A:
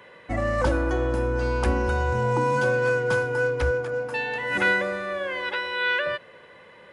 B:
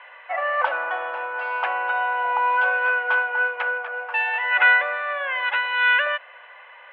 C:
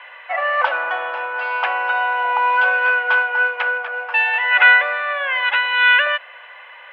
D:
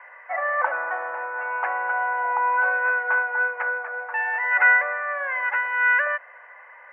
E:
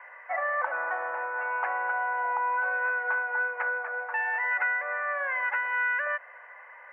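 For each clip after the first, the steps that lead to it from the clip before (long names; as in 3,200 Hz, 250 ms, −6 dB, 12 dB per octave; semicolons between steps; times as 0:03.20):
elliptic band-pass filter 690–2,900 Hz, stop band 50 dB; level +7 dB
high-shelf EQ 2,900 Hz +10 dB; level +2.5 dB
elliptic low-pass filter 2,000 Hz, stop band 70 dB; level −4.5 dB
downward compressor 6 to 1, threshold −23 dBFS, peak gain reduction 10.5 dB; level −2 dB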